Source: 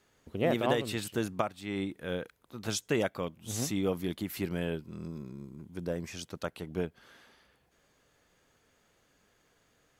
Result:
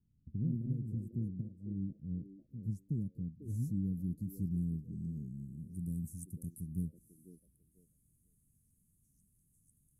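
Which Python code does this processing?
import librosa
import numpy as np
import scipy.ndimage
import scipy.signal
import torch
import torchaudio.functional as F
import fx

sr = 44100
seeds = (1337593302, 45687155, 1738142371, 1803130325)

p1 = fx.filter_sweep_lowpass(x, sr, from_hz=2000.0, to_hz=9400.0, start_s=2.08, end_s=5.97, q=2.5)
p2 = scipy.signal.sosfilt(scipy.signal.cheby2(4, 80, [850.0, 3100.0], 'bandstop', fs=sr, output='sos'), p1)
p3 = fx.high_shelf(p2, sr, hz=7300.0, db=7.5)
p4 = p3 + fx.echo_stepped(p3, sr, ms=495, hz=430.0, octaves=0.7, feedback_pct=70, wet_db=-3, dry=0)
y = p4 * 10.0 ** (3.0 / 20.0)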